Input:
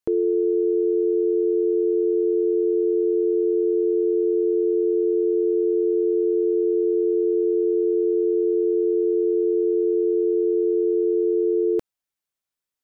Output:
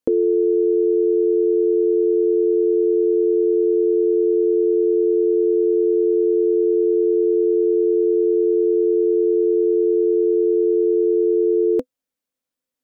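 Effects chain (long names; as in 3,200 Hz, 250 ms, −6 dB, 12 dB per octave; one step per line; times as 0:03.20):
hollow resonant body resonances 260/500 Hz, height 15 dB, ringing for 60 ms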